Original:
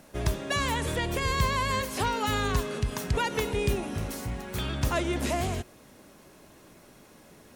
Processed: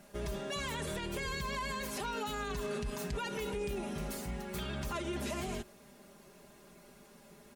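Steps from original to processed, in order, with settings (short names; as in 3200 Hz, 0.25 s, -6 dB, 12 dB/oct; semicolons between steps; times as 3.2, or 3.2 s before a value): comb 5 ms, depth 85%; limiter -22.5 dBFS, peak gain reduction 10 dB; gain -6.5 dB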